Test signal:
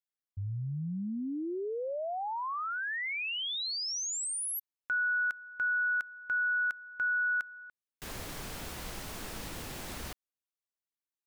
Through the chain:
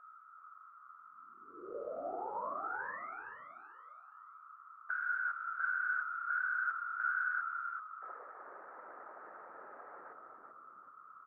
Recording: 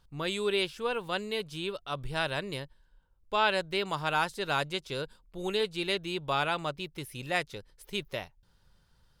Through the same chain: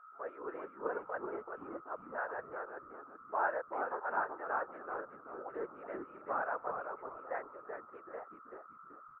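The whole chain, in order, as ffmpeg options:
-filter_complex "[0:a]aeval=exprs='val(0)+0.00398*sin(2*PI*1300*n/s)':c=same,asuperpass=centerf=870:order=12:qfactor=0.7,afftfilt=real='hypot(re,im)*cos(2*PI*random(0))':imag='hypot(re,im)*sin(2*PI*random(1))':win_size=512:overlap=0.75,asplit=2[s0][s1];[s1]asplit=4[s2][s3][s4][s5];[s2]adelay=381,afreqshift=-88,volume=0.531[s6];[s3]adelay=762,afreqshift=-176,volume=0.18[s7];[s4]adelay=1143,afreqshift=-264,volume=0.0617[s8];[s5]adelay=1524,afreqshift=-352,volume=0.0209[s9];[s6][s7][s8][s9]amix=inputs=4:normalize=0[s10];[s0][s10]amix=inputs=2:normalize=0"

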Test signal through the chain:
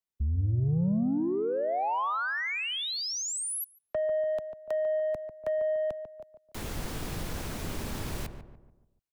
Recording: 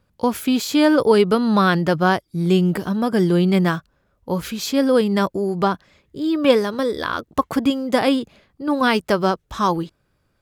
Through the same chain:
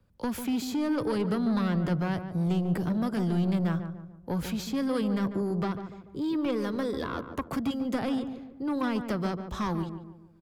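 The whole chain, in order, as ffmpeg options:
-filter_complex "[0:a]lowshelf=f=430:g=7.5,acrossover=split=190|1000[s0][s1][s2];[s0]acompressor=threshold=0.158:ratio=4[s3];[s1]acompressor=threshold=0.0891:ratio=4[s4];[s2]acompressor=threshold=0.0631:ratio=4[s5];[s3][s4][s5]amix=inputs=3:normalize=0,acrossover=split=170|1400[s6][s7][s8];[s8]alimiter=limit=0.075:level=0:latency=1:release=215[s9];[s6][s7][s9]amix=inputs=3:normalize=0,asoftclip=type=tanh:threshold=0.158,asplit=2[s10][s11];[s11]adelay=145,lowpass=f=1300:p=1,volume=0.398,asplit=2[s12][s13];[s13]adelay=145,lowpass=f=1300:p=1,volume=0.45,asplit=2[s14][s15];[s15]adelay=145,lowpass=f=1300:p=1,volume=0.45,asplit=2[s16][s17];[s17]adelay=145,lowpass=f=1300:p=1,volume=0.45,asplit=2[s18][s19];[s19]adelay=145,lowpass=f=1300:p=1,volume=0.45[s20];[s10][s12][s14][s16][s18][s20]amix=inputs=6:normalize=0,volume=0.422"

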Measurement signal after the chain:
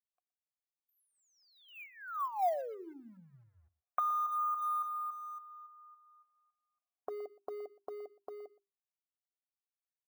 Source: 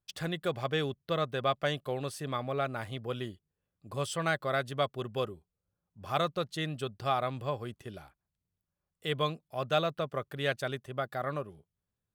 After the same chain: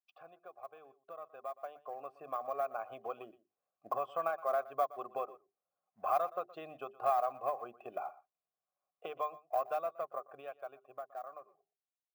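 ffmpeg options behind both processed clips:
-filter_complex "[0:a]acompressor=threshold=0.00562:ratio=8,asplit=3[s0][s1][s2];[s0]bandpass=f=730:t=q:w=8,volume=1[s3];[s1]bandpass=f=1090:t=q:w=8,volume=0.501[s4];[s2]bandpass=f=2440:t=q:w=8,volume=0.355[s5];[s3][s4][s5]amix=inputs=3:normalize=0,acrusher=bits=3:mode=log:mix=0:aa=0.000001,highpass=66,bass=f=250:g=-5,treble=f=4000:g=-1,aexciter=amount=2:drive=5.7:freq=11000,bandreject=f=50:t=h:w=6,bandreject=f=100:t=h:w=6,bandreject=f=150:t=h:w=6,bandreject=f=200:t=h:w=6,bandreject=f=250:t=h:w=6,bandreject=f=300:t=h:w=6,bandreject=f=350:t=h:w=6,bandreject=f=400:t=h:w=6,afftdn=nr=12:nf=-72,highshelf=f=2300:t=q:w=1.5:g=-8.5,asplit=2[s6][s7];[s7]aecho=0:1:120:0.112[s8];[s6][s8]amix=inputs=2:normalize=0,dynaudnorm=f=150:g=31:m=5.62,volume=2.24"

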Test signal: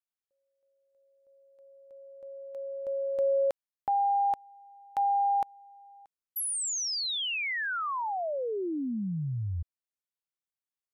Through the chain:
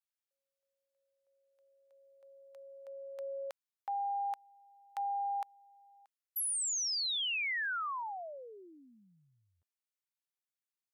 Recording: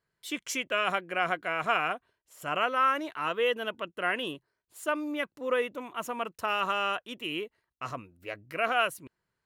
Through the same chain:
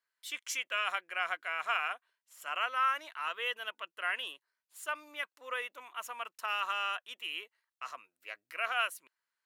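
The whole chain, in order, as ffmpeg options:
-af "highpass=1100,volume=0.75"

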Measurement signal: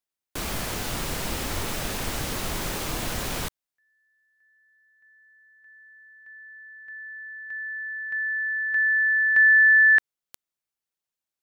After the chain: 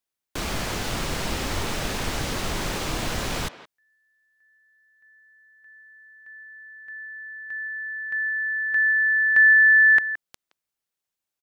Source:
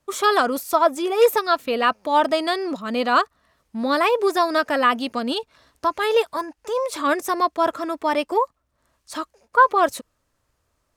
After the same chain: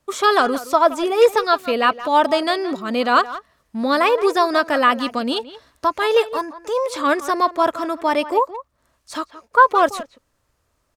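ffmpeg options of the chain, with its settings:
-filter_complex "[0:a]acrossover=split=7900[s0][s1];[s1]acompressor=threshold=0.00562:ratio=4:attack=1:release=60[s2];[s0][s2]amix=inputs=2:normalize=0,asplit=2[s3][s4];[s4]adelay=170,highpass=300,lowpass=3400,asoftclip=type=hard:threshold=0.251,volume=0.2[s5];[s3][s5]amix=inputs=2:normalize=0,volume=1.33"

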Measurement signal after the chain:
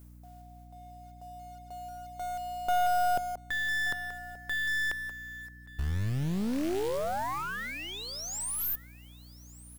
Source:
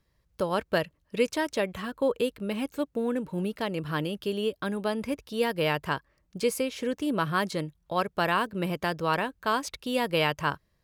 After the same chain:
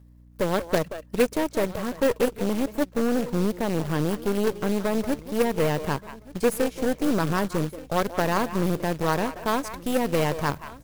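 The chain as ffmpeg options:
-filter_complex "[0:a]equalizer=f=3400:w=0.51:g=-14,areverse,acompressor=mode=upward:threshold=0.00794:ratio=2.5,areverse,asplit=2[s0][s1];[s1]adelay=180,highpass=300,lowpass=3400,asoftclip=type=hard:threshold=0.0668,volume=0.316[s2];[s0][s2]amix=inputs=2:normalize=0,aeval=exprs='0.188*(cos(1*acos(clip(val(0)/0.188,-1,1)))-cos(1*PI/2))+0.0266*(cos(6*acos(clip(val(0)/0.188,-1,1)))-cos(6*PI/2))+0.0376*(cos(8*acos(clip(val(0)/0.188,-1,1)))-cos(8*PI/2))':c=same,acrusher=bits=3:mode=log:mix=0:aa=0.000001,asplit=2[s3][s4];[s4]aecho=0:1:1179:0.1[s5];[s3][s5]amix=inputs=2:normalize=0,aeval=exprs='val(0)+0.00178*(sin(2*PI*60*n/s)+sin(2*PI*2*60*n/s)/2+sin(2*PI*3*60*n/s)/3+sin(2*PI*4*60*n/s)/4+sin(2*PI*5*60*n/s)/5)':c=same,volume=1.78"

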